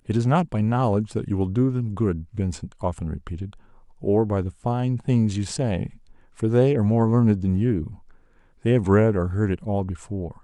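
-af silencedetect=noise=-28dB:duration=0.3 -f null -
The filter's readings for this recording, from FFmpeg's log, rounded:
silence_start: 3.46
silence_end: 4.04 | silence_duration: 0.58
silence_start: 5.86
silence_end: 6.40 | silence_duration: 0.53
silence_start: 7.87
silence_end: 8.65 | silence_duration: 0.78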